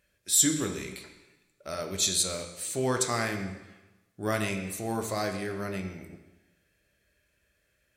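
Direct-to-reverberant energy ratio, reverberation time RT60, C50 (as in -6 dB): 5.0 dB, 1.1 s, 7.5 dB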